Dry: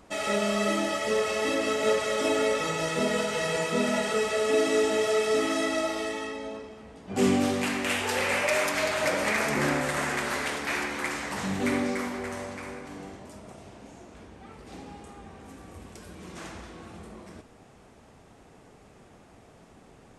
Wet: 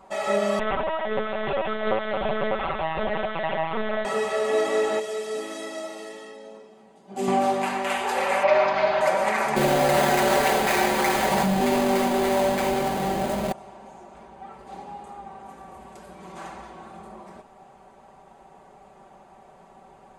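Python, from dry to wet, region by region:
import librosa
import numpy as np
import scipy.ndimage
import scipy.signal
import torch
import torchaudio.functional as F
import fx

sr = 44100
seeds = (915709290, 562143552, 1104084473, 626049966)

y = fx.chain(x, sr, fx.peak_eq(hz=360.0, db=-3.0, octaves=0.65),
    fx.lpc_vocoder(seeds[0], excitation='pitch_kept', order=10), at=(0.59, 4.05))
y = fx.chain(y, sr, fx.highpass(hz=210.0, slope=12),
    fx.peak_eq(hz=1100.0, db=-11.5, octaves=2.7), at=(4.99, 7.28))
y = fx.chain(y, sr, fx.steep_lowpass(hz=5200.0, slope=36),
    fx.low_shelf(hz=480.0, db=4.5),
    fx.quant_float(bits=8), at=(8.43, 9.01))
y = fx.chain(y, sr, fx.halfwave_hold(),
    fx.peak_eq(hz=1100.0, db=-9.0, octaves=1.0),
    fx.env_flatten(amount_pct=70), at=(9.56, 13.52))
y = fx.peak_eq(y, sr, hz=820.0, db=14.0, octaves=1.3)
y = fx.notch(y, sr, hz=5500.0, q=9.9)
y = y + 0.7 * np.pad(y, (int(5.2 * sr / 1000.0), 0))[:len(y)]
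y = y * librosa.db_to_amplitude(-5.5)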